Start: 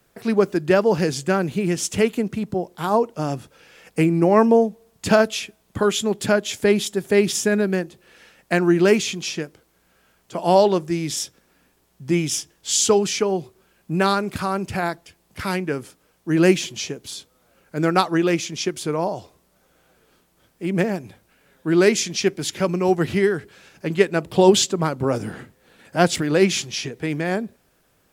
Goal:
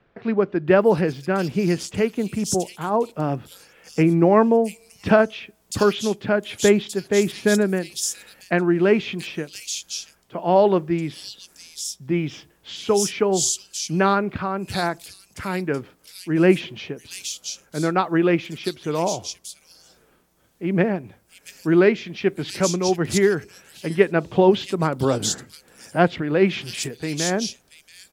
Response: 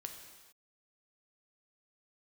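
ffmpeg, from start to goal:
-filter_complex "[0:a]tremolo=f=1.2:d=0.37,acrossover=split=3400[a][b];[b]adelay=680[c];[a][c]amix=inputs=2:normalize=0,volume=1.5dB"

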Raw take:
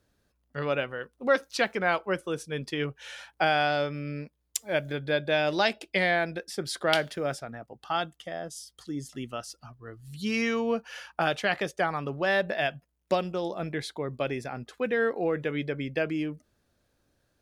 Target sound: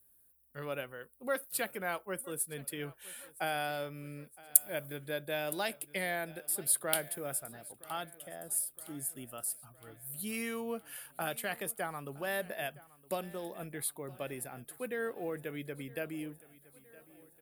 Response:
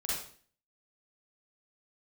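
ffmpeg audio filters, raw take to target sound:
-filter_complex "[0:a]aecho=1:1:965|1930|2895|3860|4825:0.0891|0.0526|0.031|0.0183|0.0108,acrossover=split=830|2700[a][b][c];[c]aexciter=amount=13.1:drive=9.9:freq=9k[d];[a][b][d]amix=inputs=3:normalize=0,volume=-10.5dB"

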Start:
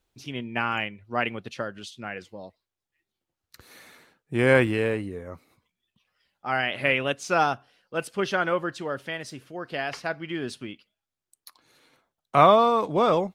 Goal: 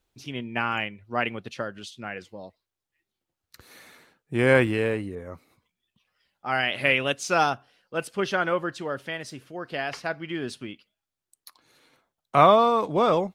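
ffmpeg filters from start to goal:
-filter_complex "[0:a]asettb=1/sr,asplit=3[a][b][c];[a]atrim=end=5.154[d];[b]atrim=start=5.15:end=7.5,asetpts=PTS-STARTPTS,afade=t=in:d=0.004:c=qsin,afade=t=out:st=2.346:d=0.004:c=qsin,adynamicequalizer=threshold=0.02:dfrequency=2600:dqfactor=0.7:tfrequency=2600:tqfactor=0.7:attack=5:release=100:ratio=0.375:range=2.5:mode=boostabove:tftype=highshelf[e];[c]atrim=start=7.496[f];[d][e]acrossfade=d=0.004:c1=hsin:c2=qsin[g];[g][f]acrossfade=d=0.004:c1=qsin:c2=hsin"

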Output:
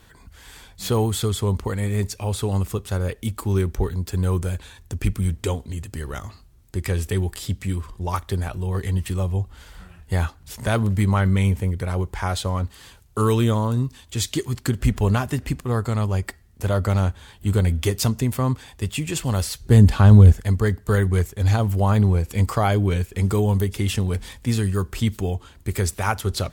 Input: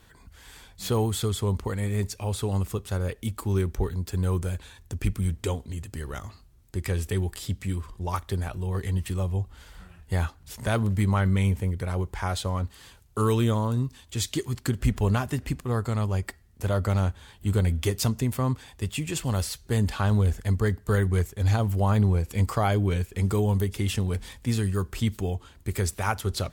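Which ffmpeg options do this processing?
-filter_complex "[0:a]asettb=1/sr,asplit=3[a][b][c];[a]atrim=end=19.604[d];[b]atrim=start=19.6:end=20.32,asetpts=PTS-STARTPTS,afade=t=in:d=0.004:c=qsin,afade=t=out:st=0.716:d=0.004:c=qsin,lowshelf=f=400:g=9.5[e];[c]atrim=start=20.316[f];[d][e]acrossfade=d=0.004:c1=hsin:c2=qsin[g];[g][f]acrossfade=d=0.004:c1=qsin:c2=hsin,volume=4dB"

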